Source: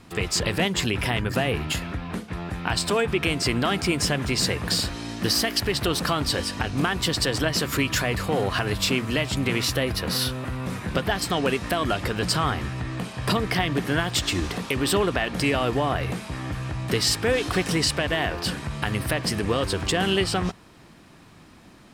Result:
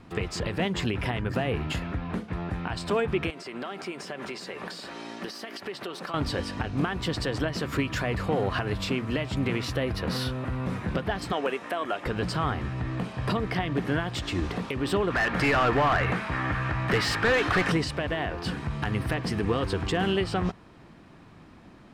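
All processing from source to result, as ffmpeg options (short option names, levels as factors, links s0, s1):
-filter_complex "[0:a]asettb=1/sr,asplit=3[s0][s1][s2];[s0]atrim=end=3.304[s3];[s1]atrim=start=3.3:end=6.14,asetpts=PTS-STARTPTS,afade=t=in:d=0.004:c=qsin,afade=t=out:st=2.836:d=0.004:c=qsin,highpass=340,acompressor=threshold=0.0316:ratio=6:attack=3.2:release=140:knee=1:detection=peak,aecho=1:1:5.2:0.31,atrim=end_sample=125244[s4];[s2]atrim=start=6.136[s5];[s3][s4]acrossfade=d=0.004:c1=hsin:c2=qsin[s6];[s6][s5]acrossfade=d=0.004:c1=qsin:c2=hsin,asettb=1/sr,asplit=3[s7][s8][s9];[s7]atrim=end=11.324[s10];[s8]atrim=start=11.32:end=12.06,asetpts=PTS-STARTPTS,afade=t=in:d=0.004:c=qsin,afade=t=out:st=0.736:d=0.004:c=qsin,highpass=400,equalizer=f=4500:t=o:w=0.46:g=-7[s11];[s9]atrim=start=12.056[s12];[s10][s11]acrossfade=d=0.004:c1=hsin:c2=qsin[s13];[s13][s12]acrossfade=d=0.004:c1=qsin:c2=hsin,asettb=1/sr,asplit=3[s14][s15][s16];[s14]atrim=end=15.104[s17];[s15]atrim=start=15.1:end=17.72,asetpts=PTS-STARTPTS,afade=t=in:d=0.004:c=qsin,afade=t=out:st=2.616:d=0.004:c=qsin,equalizer=f=1600:w=0.74:g=12.5,asoftclip=type=hard:threshold=0.133[s18];[s16]atrim=start=17.716[s19];[s17][s18]acrossfade=d=0.004:c1=hsin:c2=qsin[s20];[s20][s19]acrossfade=d=0.004:c1=qsin:c2=hsin,asettb=1/sr,asplit=3[s21][s22][s23];[s21]atrim=end=18.384[s24];[s22]atrim=start=18.38:end=20.04,asetpts=PTS-STARTPTS,afade=t=in:d=0.004:c=qsin,afade=t=out:st=1.656:d=0.004:c=qsin,bandreject=f=580:w=6.3,aeval=exprs='0.224*(abs(mod(val(0)/0.224+3,4)-2)-1)':c=same[s25];[s23]atrim=start=20.036[s26];[s24][s25]acrossfade=d=0.004:c1=hsin:c2=qsin[s27];[s27][s26]acrossfade=d=0.004:c1=qsin:c2=hsin,alimiter=limit=0.188:level=0:latency=1:release=379,lowpass=f=1900:p=1"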